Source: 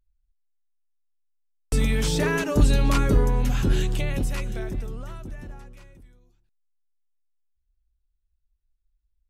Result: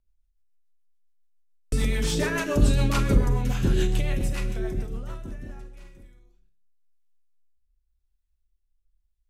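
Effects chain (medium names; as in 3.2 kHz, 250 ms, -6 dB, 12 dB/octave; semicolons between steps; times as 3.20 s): Schroeder reverb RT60 0.48 s, combs from 31 ms, DRR 4.5 dB; rotary cabinet horn 7 Hz, later 0.9 Hz, at 4.97 s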